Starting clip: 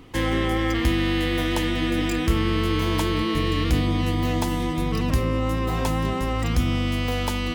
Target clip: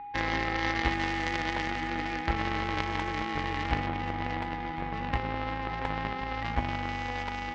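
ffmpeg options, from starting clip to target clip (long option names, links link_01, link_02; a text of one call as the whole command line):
ffmpeg -i in.wav -af "aeval=exprs='val(0)+0.0708*sin(2*PI*820*n/s)':channel_layout=same,lowpass=frequency=2000:width_type=q:width=3.6,aeval=exprs='0.473*(cos(1*acos(clip(val(0)/0.473,-1,1)))-cos(1*PI/2))+0.133*(cos(3*acos(clip(val(0)/0.473,-1,1)))-cos(3*PI/2))':channel_layout=same,volume=-2.5dB" out.wav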